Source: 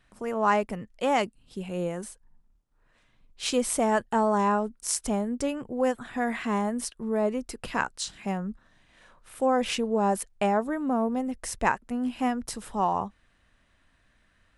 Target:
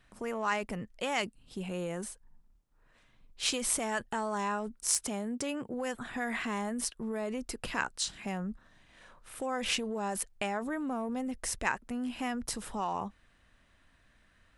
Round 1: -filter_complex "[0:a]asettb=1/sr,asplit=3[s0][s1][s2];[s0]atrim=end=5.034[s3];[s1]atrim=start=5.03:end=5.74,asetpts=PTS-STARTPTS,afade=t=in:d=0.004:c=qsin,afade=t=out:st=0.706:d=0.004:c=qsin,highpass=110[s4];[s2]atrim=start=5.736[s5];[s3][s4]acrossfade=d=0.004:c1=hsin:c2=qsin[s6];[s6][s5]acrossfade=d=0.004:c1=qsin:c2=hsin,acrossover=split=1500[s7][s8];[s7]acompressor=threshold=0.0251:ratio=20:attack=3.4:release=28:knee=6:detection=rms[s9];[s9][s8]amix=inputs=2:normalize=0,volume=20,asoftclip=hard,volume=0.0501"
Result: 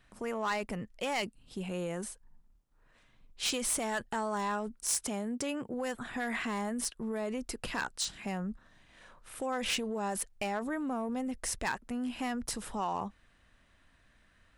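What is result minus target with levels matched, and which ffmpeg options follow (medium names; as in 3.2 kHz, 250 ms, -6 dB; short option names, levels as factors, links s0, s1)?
overload inside the chain: distortion +24 dB
-filter_complex "[0:a]asettb=1/sr,asplit=3[s0][s1][s2];[s0]atrim=end=5.034[s3];[s1]atrim=start=5.03:end=5.74,asetpts=PTS-STARTPTS,afade=t=in:d=0.004:c=qsin,afade=t=out:st=0.706:d=0.004:c=qsin,highpass=110[s4];[s2]atrim=start=5.736[s5];[s3][s4]acrossfade=d=0.004:c1=hsin:c2=qsin[s6];[s6][s5]acrossfade=d=0.004:c1=qsin:c2=hsin,acrossover=split=1500[s7][s8];[s7]acompressor=threshold=0.0251:ratio=20:attack=3.4:release=28:knee=6:detection=rms[s9];[s9][s8]amix=inputs=2:normalize=0,volume=5.31,asoftclip=hard,volume=0.188"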